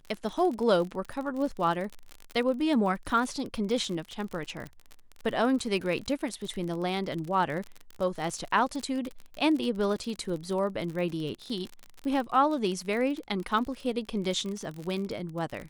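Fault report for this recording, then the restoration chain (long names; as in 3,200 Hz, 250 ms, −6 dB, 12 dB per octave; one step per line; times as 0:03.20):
surface crackle 44 per second −33 dBFS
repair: click removal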